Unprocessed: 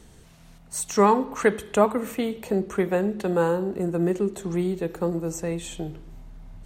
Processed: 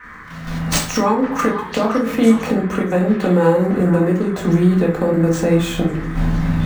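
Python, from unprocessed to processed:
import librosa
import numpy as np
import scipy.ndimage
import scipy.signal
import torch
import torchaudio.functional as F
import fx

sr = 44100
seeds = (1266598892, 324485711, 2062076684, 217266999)

p1 = scipy.signal.medfilt(x, 5)
p2 = fx.recorder_agc(p1, sr, target_db=-11.0, rise_db_per_s=46.0, max_gain_db=30)
p3 = fx.highpass(p2, sr, hz=58.0, slope=6)
p4 = fx.low_shelf(p3, sr, hz=110.0, db=2.5)
p5 = fx.level_steps(p4, sr, step_db=10)
p6 = fx.dmg_noise_band(p5, sr, seeds[0], low_hz=1000.0, high_hz=2000.0, level_db=-43.0)
p7 = p6 + fx.echo_stepped(p6, sr, ms=504, hz=1300.0, octaves=1.4, feedback_pct=70, wet_db=-6.0, dry=0)
p8 = fx.room_shoebox(p7, sr, seeds[1], volume_m3=300.0, walls='furnished', distance_m=2.0)
y = p8 * librosa.db_to_amplitude(1.0)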